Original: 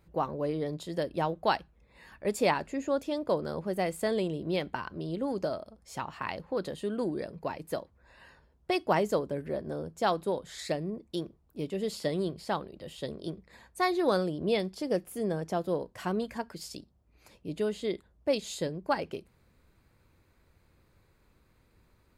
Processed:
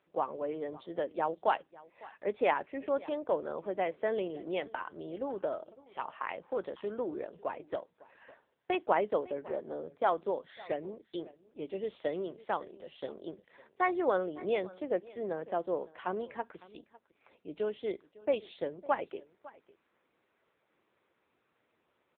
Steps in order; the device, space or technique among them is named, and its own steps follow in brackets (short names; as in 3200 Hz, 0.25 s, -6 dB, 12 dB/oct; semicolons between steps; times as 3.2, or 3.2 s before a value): satellite phone (BPF 370–3300 Hz; echo 0.554 s -20.5 dB; AMR-NB 6.7 kbps 8000 Hz)